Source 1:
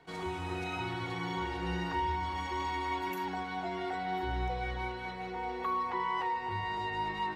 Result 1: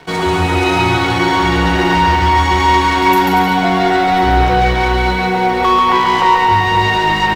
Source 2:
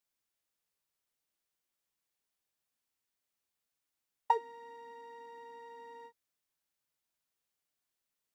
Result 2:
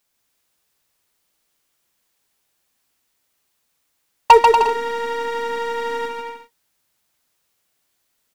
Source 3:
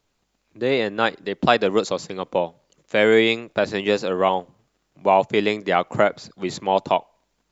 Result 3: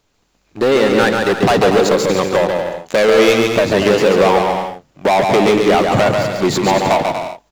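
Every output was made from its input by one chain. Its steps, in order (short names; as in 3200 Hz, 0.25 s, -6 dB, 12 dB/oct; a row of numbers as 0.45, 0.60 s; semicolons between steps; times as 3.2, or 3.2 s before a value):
dynamic EQ 5300 Hz, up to -5 dB, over -41 dBFS, Q 0.73; sample leveller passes 2; compressor, threshold -15 dBFS; soft clip -20.5 dBFS; bouncing-ball echo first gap 0.14 s, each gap 0.7×, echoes 5; normalise peaks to -2 dBFS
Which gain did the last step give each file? +16.0, +19.0, +11.0 dB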